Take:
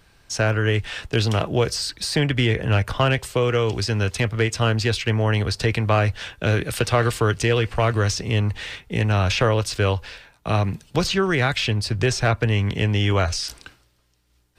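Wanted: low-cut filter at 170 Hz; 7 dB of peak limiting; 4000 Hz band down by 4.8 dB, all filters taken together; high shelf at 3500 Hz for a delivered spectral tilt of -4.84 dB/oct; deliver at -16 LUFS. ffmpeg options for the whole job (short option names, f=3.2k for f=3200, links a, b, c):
-af "highpass=170,highshelf=f=3.5k:g=-3,equalizer=f=4k:t=o:g=-4.5,volume=10.5dB,alimiter=limit=-4dB:level=0:latency=1"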